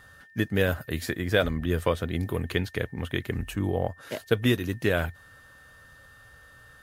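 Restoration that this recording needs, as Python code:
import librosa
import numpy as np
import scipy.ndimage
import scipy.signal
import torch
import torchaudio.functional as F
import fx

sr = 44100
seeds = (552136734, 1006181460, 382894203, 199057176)

y = fx.notch(x, sr, hz=1800.0, q=30.0)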